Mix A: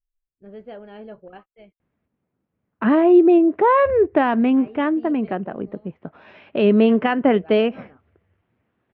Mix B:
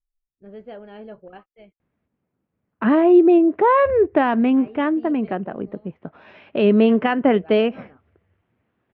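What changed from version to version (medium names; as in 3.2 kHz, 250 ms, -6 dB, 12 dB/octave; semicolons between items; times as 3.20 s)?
no change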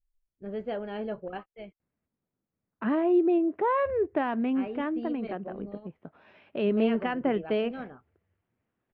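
first voice +4.5 dB; second voice -10.5 dB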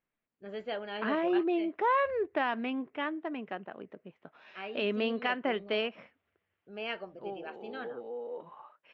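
second voice: entry -1.80 s; master: add tilt EQ +4 dB/octave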